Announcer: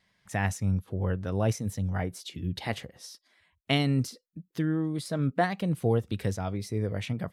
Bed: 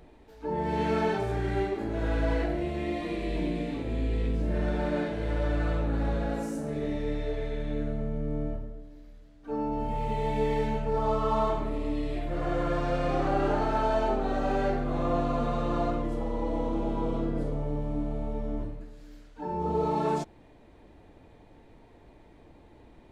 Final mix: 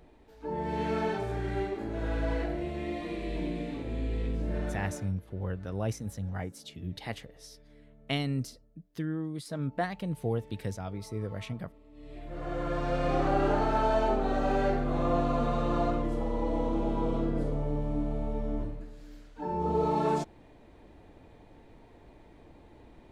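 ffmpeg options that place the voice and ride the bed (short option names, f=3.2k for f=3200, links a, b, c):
-filter_complex "[0:a]adelay=4400,volume=-5.5dB[a];[1:a]volume=22dB,afade=t=out:st=4.56:d=0.57:silence=0.0794328,afade=t=in:st=11.92:d=1.22:silence=0.0530884[b];[a][b]amix=inputs=2:normalize=0"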